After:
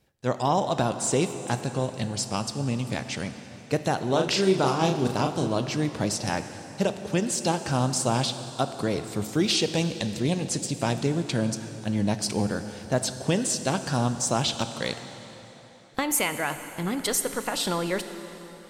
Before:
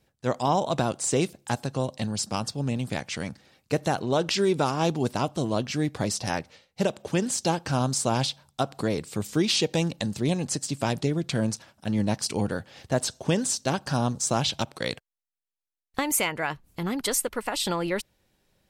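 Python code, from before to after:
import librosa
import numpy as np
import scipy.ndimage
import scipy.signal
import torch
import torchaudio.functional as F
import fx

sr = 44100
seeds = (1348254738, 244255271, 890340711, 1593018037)

y = fx.doubler(x, sr, ms=37.0, db=-5.0, at=(4.09, 5.48))
y = fx.rev_plate(y, sr, seeds[0], rt60_s=3.8, hf_ratio=0.85, predelay_ms=0, drr_db=9.0)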